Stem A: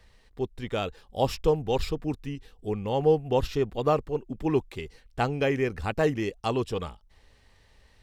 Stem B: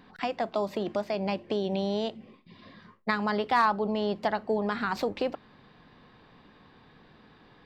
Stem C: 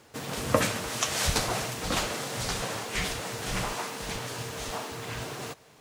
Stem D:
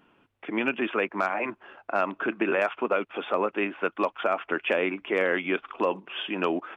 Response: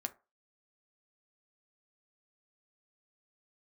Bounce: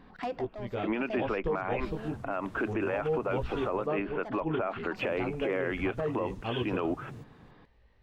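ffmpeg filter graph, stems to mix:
-filter_complex "[0:a]lowpass=3900,flanger=delay=16.5:depth=2:speed=1.2,volume=0.841,asplit=2[s0][s1];[1:a]asoftclip=type=tanh:threshold=0.0473,volume=1.06[s2];[2:a]acompressor=threshold=0.0224:ratio=6,asubboost=boost=10:cutoff=240,acrossover=split=1400|5800[s3][s4][s5];[s3]acompressor=threshold=0.0316:ratio=4[s6];[s4]acompressor=threshold=0.00282:ratio=4[s7];[s5]acompressor=threshold=0.00316:ratio=4[s8];[s6][s7][s8]amix=inputs=3:normalize=0,adelay=1700,volume=0.266,asplit=3[s9][s10][s11];[s9]atrim=end=3.87,asetpts=PTS-STARTPTS,afade=t=out:st=3.866:d=0.004:c=hsin[s12];[s10]atrim=start=3.87:end=4.98,asetpts=PTS-STARTPTS,volume=0[s13];[s11]atrim=start=4.98,asetpts=PTS-STARTPTS,afade=t=in:d=0.004:c=hsin[s14];[s12][s13][s14]concat=n=3:v=0:a=1[s15];[3:a]adelay=350,volume=1.06[s16];[s1]apad=whole_len=337499[s17];[s2][s17]sidechaincompress=threshold=0.00794:ratio=8:attack=20:release=443[s18];[s0][s18][s15][s16]amix=inputs=4:normalize=0,highshelf=f=2400:g=-10,alimiter=limit=0.0841:level=0:latency=1:release=73"

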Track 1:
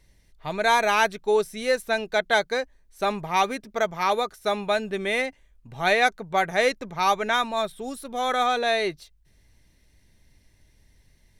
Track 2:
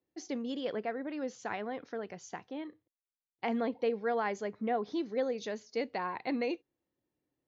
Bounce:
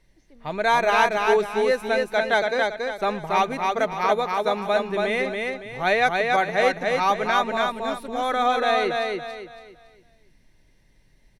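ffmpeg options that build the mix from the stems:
-filter_complex "[0:a]equalizer=f=73:t=o:w=0.76:g=-14.5,volume=1.12,asplit=2[s0][s1];[s1]volume=0.708[s2];[1:a]volume=0.133[s3];[s2]aecho=0:1:280|560|840|1120|1400:1|0.34|0.116|0.0393|0.0134[s4];[s0][s3][s4]amix=inputs=3:normalize=0,highshelf=f=4300:g=-9.5"

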